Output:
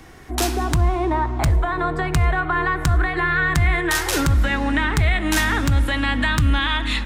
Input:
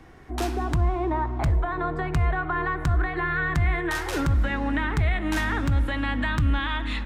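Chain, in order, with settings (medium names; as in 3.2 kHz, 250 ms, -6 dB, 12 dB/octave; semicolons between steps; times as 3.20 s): treble shelf 3.5 kHz +12 dB; trim +4.5 dB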